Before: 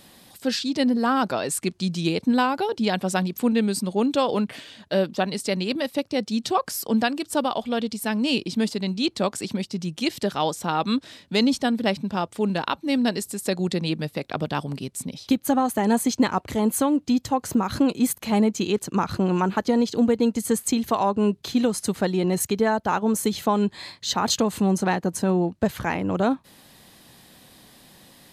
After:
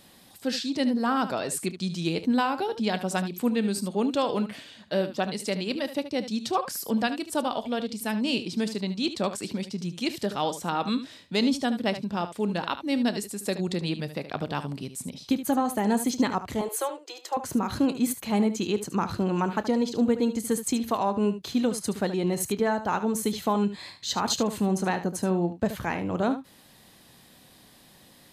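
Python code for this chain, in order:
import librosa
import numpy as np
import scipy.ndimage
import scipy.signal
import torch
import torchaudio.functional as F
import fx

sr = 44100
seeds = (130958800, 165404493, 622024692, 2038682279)

p1 = fx.cheby1_highpass(x, sr, hz=330.0, order=8, at=(16.61, 17.37))
p2 = p1 + fx.room_early_taps(p1, sr, ms=(29, 74), db=(-17.5, -12.0), dry=0)
y = p2 * librosa.db_to_amplitude(-4.0)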